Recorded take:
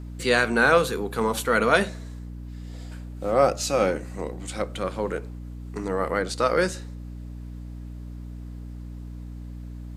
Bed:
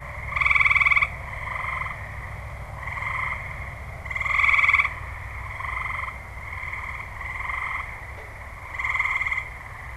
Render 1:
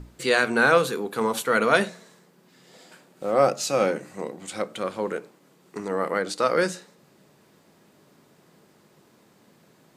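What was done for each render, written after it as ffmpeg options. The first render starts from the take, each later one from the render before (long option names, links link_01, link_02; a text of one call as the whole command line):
ffmpeg -i in.wav -af "bandreject=frequency=60:width_type=h:width=6,bandreject=frequency=120:width_type=h:width=6,bandreject=frequency=180:width_type=h:width=6,bandreject=frequency=240:width_type=h:width=6,bandreject=frequency=300:width_type=h:width=6" out.wav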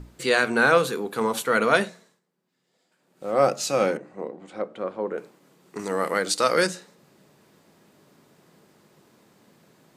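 ffmpeg -i in.wav -filter_complex "[0:a]asettb=1/sr,asplit=3[link_01][link_02][link_03];[link_01]atrim=end=3.974[link_04];[link_02]atrim=start=3.97:end=5.18,asetpts=PTS-STARTPTS,afade=type=in:duration=0.004:curve=qsin,afade=type=out:start_time=1.206:duration=0.004:curve=qsin,bandpass=frequency=470:width_type=q:width=0.58[link_05];[link_03]atrim=start=5.176[link_06];[link_04][link_05]acrossfade=duration=0.004:curve1=hsin:curve2=qsin[link_07];[link_07][link_06]acrossfade=duration=0.004:curve1=qsin:curve2=hsin,asettb=1/sr,asplit=3[link_08][link_09][link_10];[link_08]atrim=end=5.794[link_11];[link_09]atrim=start=5.79:end=6.67,asetpts=PTS-STARTPTS,afade=type=in:duration=0.004:curve=qsin,afade=type=out:start_time=0.876:duration=0.004:curve=qsin,highshelf=frequency=3100:gain=11[link_12];[link_10]atrim=start=6.666[link_13];[link_11][link_12]acrossfade=duration=0.004:curve1=hsin:curve2=qsin[link_14];[link_14][link_13]acrossfade=duration=0.004:curve1=qsin:curve2=hsin,asplit=3[link_15][link_16][link_17];[link_15]atrim=end=2.21,asetpts=PTS-STARTPTS,afade=type=out:start_time=1.74:duration=0.47:silence=0.1[link_18];[link_16]atrim=start=2.21:end=2.97,asetpts=PTS-STARTPTS,volume=-20dB[link_19];[link_17]atrim=start=2.97,asetpts=PTS-STARTPTS,afade=type=in:duration=0.47:silence=0.1[link_20];[link_18][link_19][link_20]concat=n=3:v=0:a=1" out.wav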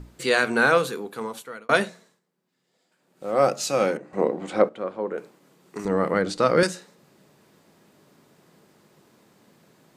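ffmpeg -i in.wav -filter_complex "[0:a]asettb=1/sr,asplit=3[link_01][link_02][link_03];[link_01]atrim=end=5.854[link_04];[link_02]atrim=start=5.85:end=6.63,asetpts=PTS-STARTPTS,afade=type=in:duration=0.004:curve=qsin,afade=type=out:start_time=0.776:duration=0.004:curve=qsin,aemphasis=mode=reproduction:type=riaa[link_05];[link_03]atrim=start=6.626[link_06];[link_04][link_05]acrossfade=duration=0.004:curve1=hsin:curve2=qsin[link_07];[link_07][link_06]acrossfade=duration=0.004:curve1=qsin:curve2=hsin,asplit=4[link_08][link_09][link_10][link_11];[link_08]atrim=end=1.69,asetpts=PTS-STARTPTS,afade=type=out:start_time=0.65:duration=1.04[link_12];[link_09]atrim=start=1.69:end=4.132,asetpts=PTS-STARTPTS,afade=type=in:duration=0.004:curve=hsin[link_13];[link_10]atrim=start=4.128:end=4.692,asetpts=PTS-STARTPTS,volume=11dB[link_14];[link_11]atrim=start=4.688[link_15];[link_12][link_13]concat=n=2:v=0:a=1[link_16];[link_16][link_14]acrossfade=duration=0.004:curve1=hsin:curve2=hsin[link_17];[link_17][link_15]acrossfade=duration=0.004:curve1=hsin:curve2=hsin" out.wav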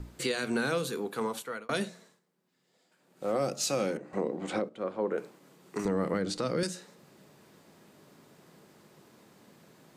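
ffmpeg -i in.wav -filter_complex "[0:a]acrossover=split=400|3000[link_01][link_02][link_03];[link_02]acompressor=threshold=-30dB:ratio=4[link_04];[link_01][link_04][link_03]amix=inputs=3:normalize=0,alimiter=limit=-20dB:level=0:latency=1:release=305" out.wav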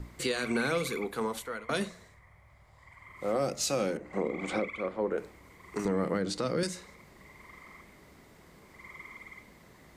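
ffmpeg -i in.wav -i bed.wav -filter_complex "[1:a]volume=-23.5dB[link_01];[0:a][link_01]amix=inputs=2:normalize=0" out.wav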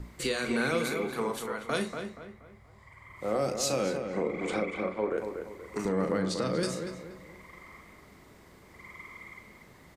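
ffmpeg -i in.wav -filter_complex "[0:a]asplit=2[link_01][link_02];[link_02]adelay=38,volume=-9.5dB[link_03];[link_01][link_03]amix=inputs=2:normalize=0,asplit=2[link_04][link_05];[link_05]adelay=238,lowpass=frequency=2300:poles=1,volume=-6.5dB,asplit=2[link_06][link_07];[link_07]adelay=238,lowpass=frequency=2300:poles=1,volume=0.39,asplit=2[link_08][link_09];[link_09]adelay=238,lowpass=frequency=2300:poles=1,volume=0.39,asplit=2[link_10][link_11];[link_11]adelay=238,lowpass=frequency=2300:poles=1,volume=0.39,asplit=2[link_12][link_13];[link_13]adelay=238,lowpass=frequency=2300:poles=1,volume=0.39[link_14];[link_06][link_08][link_10][link_12][link_14]amix=inputs=5:normalize=0[link_15];[link_04][link_15]amix=inputs=2:normalize=0" out.wav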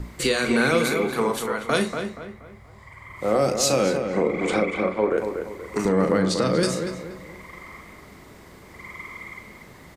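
ffmpeg -i in.wav -af "volume=8.5dB" out.wav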